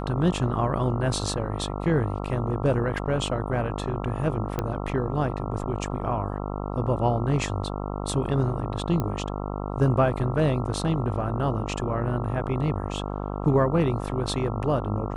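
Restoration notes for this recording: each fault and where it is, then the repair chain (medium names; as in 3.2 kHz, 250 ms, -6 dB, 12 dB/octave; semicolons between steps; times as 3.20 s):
buzz 50 Hz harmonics 27 -31 dBFS
4.59 s: pop -13 dBFS
9.00 s: pop -15 dBFS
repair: de-click; de-hum 50 Hz, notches 27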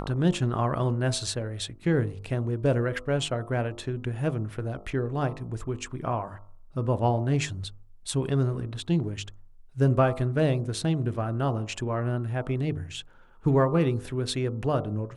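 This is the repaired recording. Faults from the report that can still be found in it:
9.00 s: pop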